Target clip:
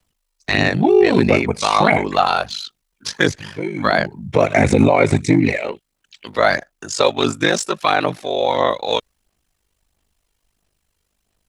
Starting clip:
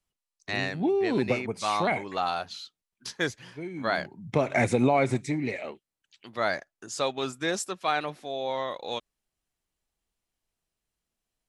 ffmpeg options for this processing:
ffmpeg -i in.wav -filter_complex "[0:a]aphaser=in_gain=1:out_gain=1:delay=2.2:decay=0.37:speed=1.5:type=sinusoidal,acrossover=split=120|5200[link_01][link_02][link_03];[link_03]volume=33.5dB,asoftclip=hard,volume=-33.5dB[link_04];[link_01][link_02][link_04]amix=inputs=3:normalize=0,aeval=exprs='val(0)*sin(2*PI*25*n/s)':channel_layout=same,acrossover=split=8700[link_05][link_06];[link_06]acompressor=threshold=-59dB:ratio=4:attack=1:release=60[link_07];[link_05][link_07]amix=inputs=2:normalize=0,alimiter=level_in=16.5dB:limit=-1dB:release=50:level=0:latency=1,volume=-1dB" out.wav

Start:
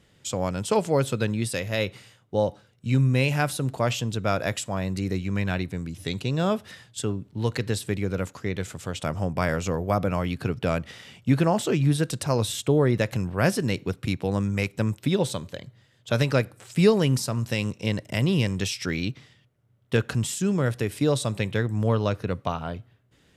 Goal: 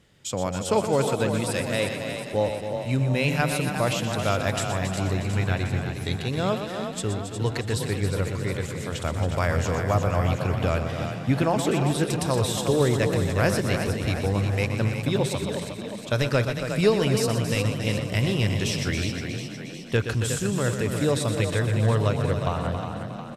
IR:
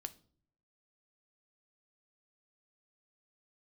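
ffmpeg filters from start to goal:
-filter_complex "[0:a]asplit=2[link_01][link_02];[link_02]aecho=0:1:122.4|274.1:0.355|0.355[link_03];[link_01][link_03]amix=inputs=2:normalize=0,asubboost=boost=10:cutoff=50,asplit=2[link_04][link_05];[link_05]asplit=7[link_06][link_07][link_08][link_09][link_10][link_11][link_12];[link_06]adelay=360,afreqshift=31,volume=-8dB[link_13];[link_07]adelay=720,afreqshift=62,volume=-12.7dB[link_14];[link_08]adelay=1080,afreqshift=93,volume=-17.5dB[link_15];[link_09]adelay=1440,afreqshift=124,volume=-22.2dB[link_16];[link_10]adelay=1800,afreqshift=155,volume=-26.9dB[link_17];[link_11]adelay=2160,afreqshift=186,volume=-31.7dB[link_18];[link_12]adelay=2520,afreqshift=217,volume=-36.4dB[link_19];[link_13][link_14][link_15][link_16][link_17][link_18][link_19]amix=inputs=7:normalize=0[link_20];[link_04][link_20]amix=inputs=2:normalize=0"

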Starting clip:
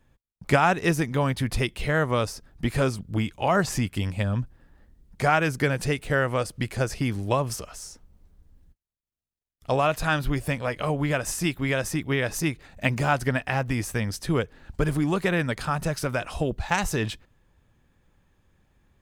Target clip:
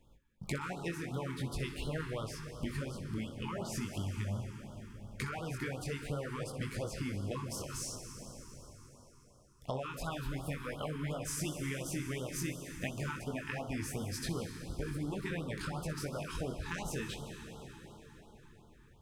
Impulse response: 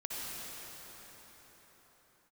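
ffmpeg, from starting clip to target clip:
-filter_complex "[0:a]flanger=delay=18.5:depth=4.9:speed=0.45,acompressor=threshold=-38dB:ratio=8,asplit=2[link_01][link_02];[1:a]atrim=start_sample=2205,adelay=62[link_03];[link_02][link_03]afir=irnorm=-1:irlink=0,volume=-8.5dB[link_04];[link_01][link_04]amix=inputs=2:normalize=0,afftfilt=real='re*(1-between(b*sr/1024,580*pow(2100/580,0.5+0.5*sin(2*PI*2.8*pts/sr))/1.41,580*pow(2100/580,0.5+0.5*sin(2*PI*2.8*pts/sr))*1.41))':imag='im*(1-between(b*sr/1024,580*pow(2100/580,0.5+0.5*sin(2*PI*2.8*pts/sr))/1.41,580*pow(2100/580,0.5+0.5*sin(2*PI*2.8*pts/sr))*1.41))':win_size=1024:overlap=0.75,volume=2.5dB"

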